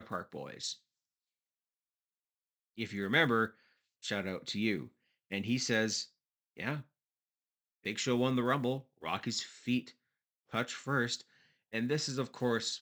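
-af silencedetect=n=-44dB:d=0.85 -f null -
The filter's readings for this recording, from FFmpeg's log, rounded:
silence_start: 0.73
silence_end: 2.78 | silence_duration: 2.05
silence_start: 6.81
silence_end: 7.85 | silence_duration: 1.04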